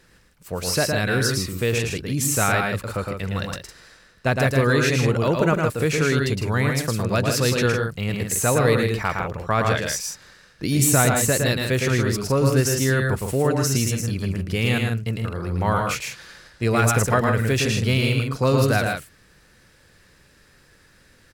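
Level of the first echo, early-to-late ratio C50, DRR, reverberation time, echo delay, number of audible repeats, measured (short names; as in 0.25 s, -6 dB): -4.0 dB, none, none, none, 0.112 s, 2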